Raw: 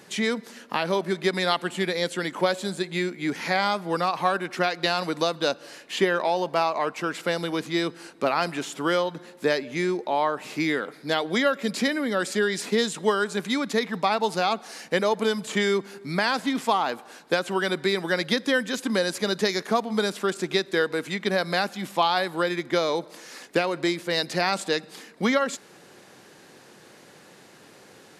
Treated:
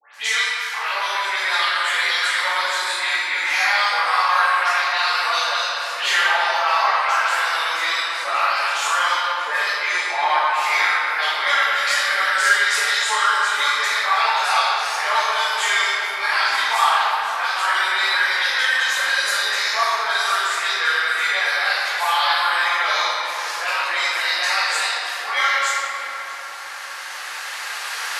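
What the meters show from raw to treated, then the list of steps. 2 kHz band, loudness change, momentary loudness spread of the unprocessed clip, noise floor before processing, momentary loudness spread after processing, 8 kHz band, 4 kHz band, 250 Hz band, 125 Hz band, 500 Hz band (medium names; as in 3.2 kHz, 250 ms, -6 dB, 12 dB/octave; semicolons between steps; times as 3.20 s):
+12.0 dB, +7.0 dB, 5 LU, -51 dBFS, 6 LU, +9.5 dB, +9.0 dB, under -20 dB, under -30 dB, -7.5 dB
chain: recorder AGC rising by 6.3 dB/s; high-pass 1 kHz 24 dB/octave; peak limiter -19.5 dBFS, peak gain reduction 8 dB; phase dispersion highs, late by 145 ms, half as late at 2.4 kHz; hard clipper -19.5 dBFS, distortion -40 dB; vibrato 5.5 Hz 24 cents; tape echo 640 ms, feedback 80%, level -14 dB, low-pass 2.4 kHz; simulated room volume 180 m³, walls hard, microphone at 2.2 m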